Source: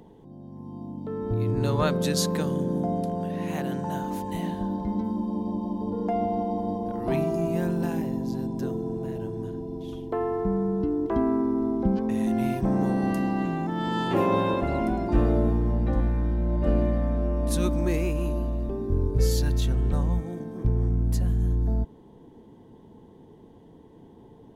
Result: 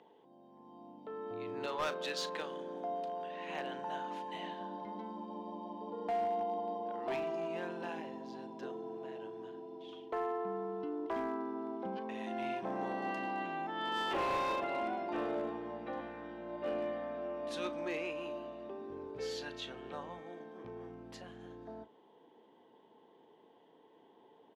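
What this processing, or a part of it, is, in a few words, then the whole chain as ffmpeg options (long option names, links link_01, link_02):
megaphone: -filter_complex "[0:a]asettb=1/sr,asplit=3[link_01][link_02][link_03];[link_01]atrim=end=1.664[link_04];[link_02]atrim=start=1.66:end=3.48,asetpts=PTS-STARTPTS,afade=type=in:duration=0.004:curve=qsin,afade=type=out:start_time=1.816:duration=0.004:curve=qsin,highpass=frequency=310:poles=1[link_05];[link_03]atrim=start=3.476[link_06];[link_04][link_05]acrossfade=duration=0.004:curve1=hsin:curve2=qsin[link_07];[link_07][link_06]acrossfade=duration=0.004:curve1=qsin:curve2=hsin,highpass=550,lowpass=3500,equalizer=frequency=3000:width_type=o:width=0.55:gain=5.5,asoftclip=type=hard:threshold=-25.5dB,asplit=2[link_08][link_09];[link_09]adelay=37,volume=-14dB[link_10];[link_08][link_10]amix=inputs=2:normalize=0,volume=-4.5dB"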